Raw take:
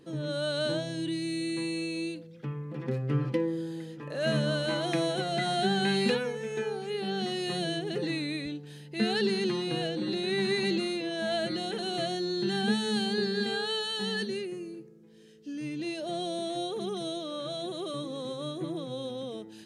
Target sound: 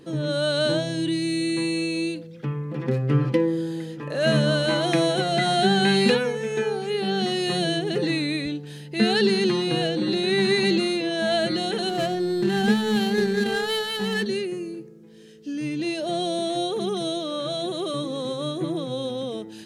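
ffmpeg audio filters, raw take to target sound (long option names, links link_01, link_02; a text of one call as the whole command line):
ffmpeg -i in.wav -filter_complex "[0:a]asettb=1/sr,asplit=3[link_01][link_02][link_03];[link_01]atrim=end=11.894[link_04];[link_02]atrim=start=11.89:end=14.26,asetpts=PTS-STARTPTS,afade=type=in:duration=0.004:curve=qsin,afade=type=out:start_time=2.366:duration=0.004:curve=qsin,adynamicsmooth=sensitivity=6:basefreq=960[link_05];[link_03]atrim=start=14.256[link_06];[link_04][link_05]acrossfade=duration=0.004:curve1=hsin:curve2=qsin[link_07];[link_07][link_06]acrossfade=duration=0.004:curve1=qsin:curve2=hsin,volume=7.5dB" out.wav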